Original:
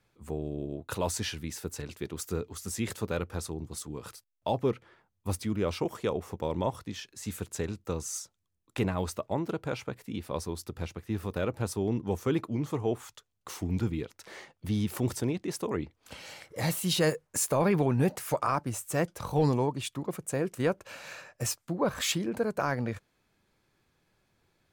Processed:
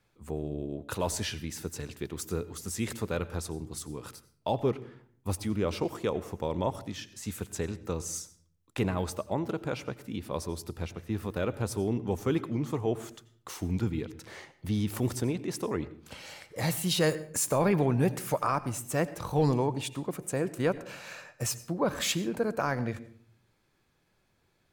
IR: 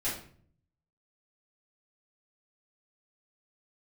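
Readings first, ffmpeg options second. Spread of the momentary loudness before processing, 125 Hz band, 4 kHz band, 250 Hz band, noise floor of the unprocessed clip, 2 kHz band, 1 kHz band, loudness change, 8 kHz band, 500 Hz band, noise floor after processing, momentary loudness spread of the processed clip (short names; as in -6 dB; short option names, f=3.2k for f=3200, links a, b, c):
13 LU, 0.0 dB, 0.0 dB, 0.0 dB, -77 dBFS, 0.0 dB, 0.0 dB, 0.0 dB, 0.0 dB, 0.0 dB, -71 dBFS, 13 LU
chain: -filter_complex "[0:a]asplit=2[a][b];[1:a]atrim=start_sample=2205,adelay=80[c];[b][c]afir=irnorm=-1:irlink=0,volume=-21.5dB[d];[a][d]amix=inputs=2:normalize=0"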